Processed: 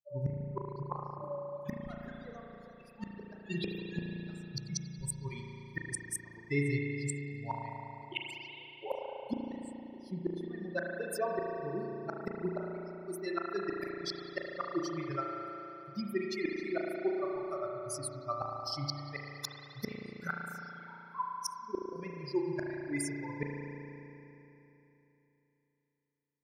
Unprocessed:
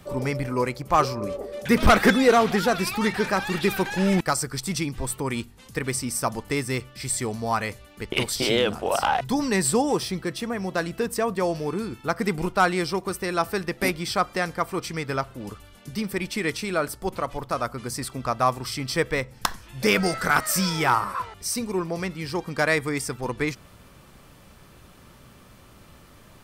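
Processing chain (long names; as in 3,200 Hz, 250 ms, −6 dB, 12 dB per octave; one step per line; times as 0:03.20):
spectral dynamics exaggerated over time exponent 3
in parallel at 0 dB: brickwall limiter −18 dBFS, peak gain reduction 7.5 dB
on the sum: gate with flip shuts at −24 dBFS, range −36 dB
spring reverb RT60 3.3 s, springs 35 ms, chirp 60 ms, DRR −1 dB
level +1.5 dB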